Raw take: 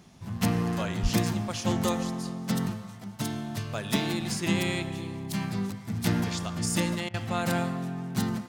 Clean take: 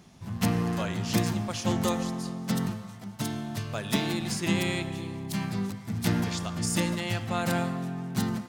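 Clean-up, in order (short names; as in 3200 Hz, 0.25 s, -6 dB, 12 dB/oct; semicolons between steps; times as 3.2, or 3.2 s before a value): 1.02–1.14 HPF 140 Hz 24 dB/oct; interpolate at 7.09, 48 ms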